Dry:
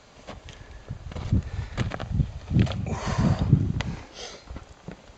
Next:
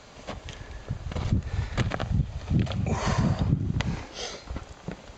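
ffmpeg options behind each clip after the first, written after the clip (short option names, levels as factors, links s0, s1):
-af "acompressor=threshold=0.0631:ratio=6,volume=1.5"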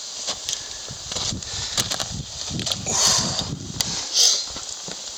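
-filter_complex "[0:a]asplit=2[s0][s1];[s1]highpass=f=720:p=1,volume=7.94,asoftclip=type=tanh:threshold=0.355[s2];[s0][s2]amix=inputs=2:normalize=0,lowpass=f=6800:p=1,volume=0.501,aexciter=amount=8.4:drive=6.8:freq=3500,volume=0.501"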